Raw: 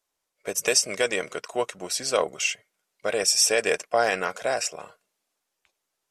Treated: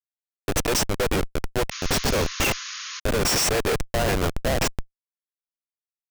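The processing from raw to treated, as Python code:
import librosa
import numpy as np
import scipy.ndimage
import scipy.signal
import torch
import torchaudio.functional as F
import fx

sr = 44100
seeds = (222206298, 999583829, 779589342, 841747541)

y = fx.schmitt(x, sr, flips_db=-25.0)
y = fx.spec_paint(y, sr, seeds[0], shape='noise', start_s=1.71, length_s=1.29, low_hz=1000.0, high_hz=6900.0, level_db=-41.0)
y = y * 10.0 ** (6.0 / 20.0)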